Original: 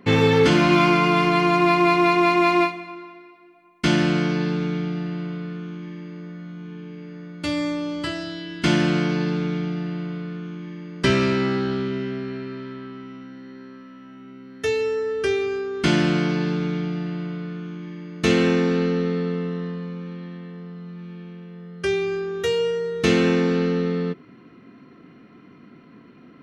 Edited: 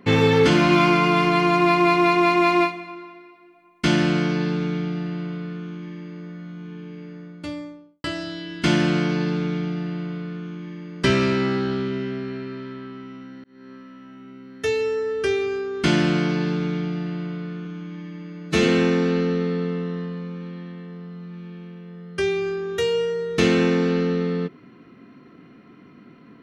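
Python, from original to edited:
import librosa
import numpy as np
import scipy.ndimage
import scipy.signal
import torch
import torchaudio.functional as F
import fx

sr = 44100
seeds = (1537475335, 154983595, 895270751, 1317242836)

y = fx.studio_fade_out(x, sr, start_s=6.98, length_s=1.06)
y = fx.edit(y, sr, fx.fade_in_span(start_s=13.44, length_s=0.28),
    fx.stretch_span(start_s=17.65, length_s=0.69, factor=1.5), tone=tone)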